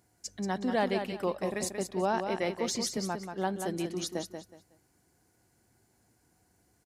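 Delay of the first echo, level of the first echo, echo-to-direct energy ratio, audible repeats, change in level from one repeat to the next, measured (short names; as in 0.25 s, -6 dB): 0.184 s, -7.0 dB, -6.5 dB, 3, -12.0 dB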